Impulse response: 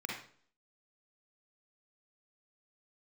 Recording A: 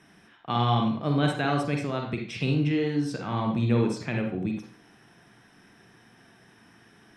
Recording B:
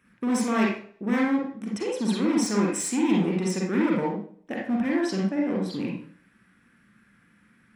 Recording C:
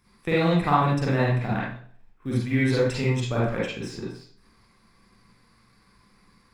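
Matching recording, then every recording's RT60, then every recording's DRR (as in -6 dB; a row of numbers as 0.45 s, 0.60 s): B; 0.50 s, 0.50 s, 0.50 s; 1.5 dB, -2.5 dB, -7.0 dB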